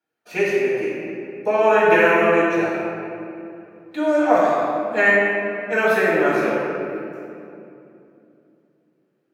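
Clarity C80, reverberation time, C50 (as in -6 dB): -0.5 dB, 2.8 s, -2.5 dB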